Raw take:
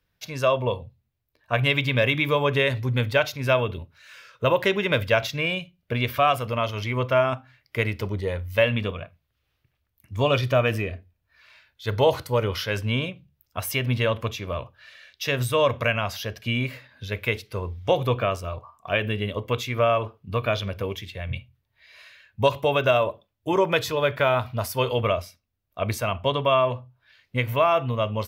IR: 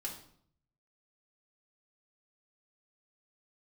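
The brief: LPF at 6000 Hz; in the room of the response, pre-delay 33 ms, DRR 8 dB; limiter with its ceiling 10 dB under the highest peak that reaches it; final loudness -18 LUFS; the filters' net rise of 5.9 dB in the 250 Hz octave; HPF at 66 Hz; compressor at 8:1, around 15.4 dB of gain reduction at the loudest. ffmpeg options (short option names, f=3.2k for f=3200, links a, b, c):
-filter_complex "[0:a]highpass=66,lowpass=6k,equalizer=f=250:t=o:g=7.5,acompressor=threshold=-30dB:ratio=8,alimiter=limit=-23.5dB:level=0:latency=1,asplit=2[a][b];[1:a]atrim=start_sample=2205,adelay=33[c];[b][c]afir=irnorm=-1:irlink=0,volume=-7.5dB[d];[a][d]amix=inputs=2:normalize=0,volume=17.5dB"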